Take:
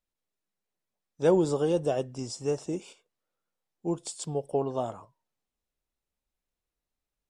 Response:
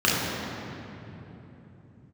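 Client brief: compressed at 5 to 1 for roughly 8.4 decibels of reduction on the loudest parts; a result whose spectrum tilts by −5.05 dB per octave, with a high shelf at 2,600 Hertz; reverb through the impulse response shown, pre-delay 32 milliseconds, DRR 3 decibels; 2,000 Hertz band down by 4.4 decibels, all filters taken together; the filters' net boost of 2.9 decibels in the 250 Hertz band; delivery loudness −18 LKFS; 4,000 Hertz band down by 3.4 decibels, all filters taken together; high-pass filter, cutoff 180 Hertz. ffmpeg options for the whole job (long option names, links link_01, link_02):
-filter_complex "[0:a]highpass=180,equalizer=frequency=250:width_type=o:gain=6,equalizer=frequency=2000:width_type=o:gain=-6.5,highshelf=frequency=2600:gain=4,equalizer=frequency=4000:width_type=o:gain=-7.5,acompressor=threshold=-25dB:ratio=5,asplit=2[link_01][link_02];[1:a]atrim=start_sample=2205,adelay=32[link_03];[link_02][link_03]afir=irnorm=-1:irlink=0,volume=-22dB[link_04];[link_01][link_04]amix=inputs=2:normalize=0,volume=13dB"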